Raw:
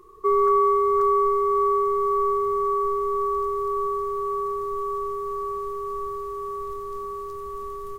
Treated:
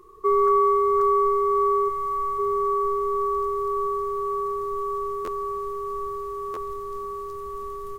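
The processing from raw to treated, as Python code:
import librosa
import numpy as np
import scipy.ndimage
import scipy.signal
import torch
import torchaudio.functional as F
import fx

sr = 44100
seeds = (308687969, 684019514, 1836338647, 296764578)

y = fx.band_shelf(x, sr, hz=560.0, db=-12.0, octaves=1.7, at=(1.88, 2.38), fade=0.02)
y = fx.buffer_glitch(y, sr, at_s=(5.24, 6.53), block=512, repeats=2)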